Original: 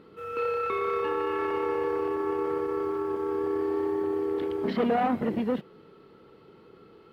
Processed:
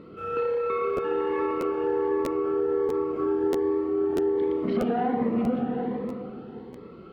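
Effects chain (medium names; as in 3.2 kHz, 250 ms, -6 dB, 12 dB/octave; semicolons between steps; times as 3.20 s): reverberation RT60 2.4 s, pre-delay 33 ms, DRR 1 dB; compression, threshold -29 dBFS, peak gain reduction 10 dB; low-pass 1.8 kHz 6 dB/octave; crackling interface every 0.64 s, samples 512, repeat, from 0.96 s; Shepard-style phaser rising 1.3 Hz; trim +8 dB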